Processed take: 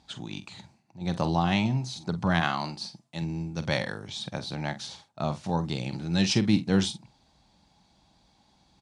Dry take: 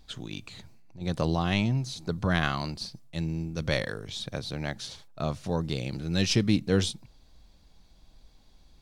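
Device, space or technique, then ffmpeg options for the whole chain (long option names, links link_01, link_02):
car door speaker: -filter_complex "[0:a]asettb=1/sr,asplit=3[link_01][link_02][link_03];[link_01]atrim=end=2.404[link_04];[link_02]atrim=start=2.4:end=3.22,asetpts=PTS-STARTPTS,afade=type=in:duration=0.004:curve=qsin,afade=type=out:start_time=0.816:duration=0.004:curve=qsin,highpass=frequency=180:poles=1[link_05];[link_03]atrim=start=3.216[link_06];[link_04][link_05]acrossfade=duration=0.004:curve1=hsin:curve2=qsin[link_07];[link_07][link_06]acrossfade=duration=0.004:curve1=qsin:curve2=hsin,highpass=100,equalizer=frequency=190:width_type=q:width=4:gain=4,equalizer=frequency=460:width_type=q:width=4:gain=-5,equalizer=frequency=850:width_type=q:width=4:gain=9,lowpass=frequency=9500:width=0.5412,lowpass=frequency=9500:width=1.3066,asplit=2[link_08][link_09];[link_09]adelay=47,volume=-12.5dB[link_10];[link_08][link_10]amix=inputs=2:normalize=0"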